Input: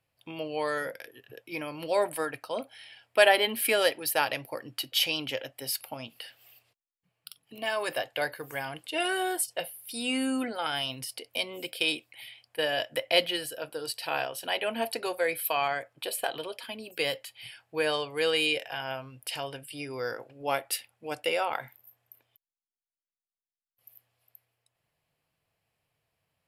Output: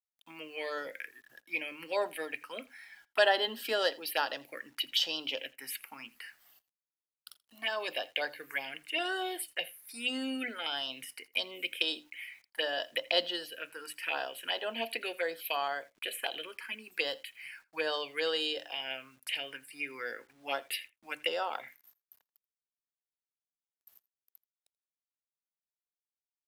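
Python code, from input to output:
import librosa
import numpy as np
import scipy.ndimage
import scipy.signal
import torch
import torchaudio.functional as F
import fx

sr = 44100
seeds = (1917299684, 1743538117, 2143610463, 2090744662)

p1 = scipy.signal.sosfilt(scipy.signal.butter(4, 200.0, 'highpass', fs=sr, output='sos'), x)
p2 = fx.peak_eq(p1, sr, hz=2200.0, db=13.5, octaves=1.6)
p3 = fx.hum_notches(p2, sr, base_hz=50, count=6)
p4 = fx.env_phaser(p3, sr, low_hz=370.0, high_hz=2300.0, full_db=-19.0)
p5 = fx.quant_dither(p4, sr, seeds[0], bits=10, dither='none')
p6 = p5 + fx.echo_single(p5, sr, ms=83, db=-23.0, dry=0)
y = F.gain(torch.from_numpy(p6), -6.5).numpy()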